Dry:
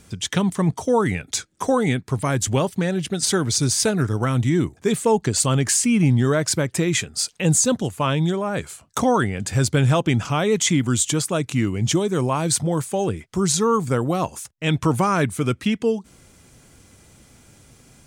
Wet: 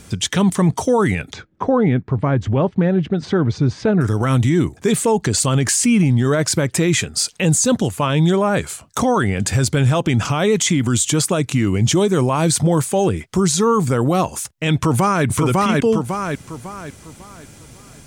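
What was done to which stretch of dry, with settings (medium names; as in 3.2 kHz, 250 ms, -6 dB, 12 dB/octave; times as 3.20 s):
1.33–4.01 s: tape spacing loss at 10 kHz 44 dB
14.75–15.25 s: echo throw 550 ms, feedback 35%, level -2.5 dB
whole clip: peak limiter -16 dBFS; trim +8 dB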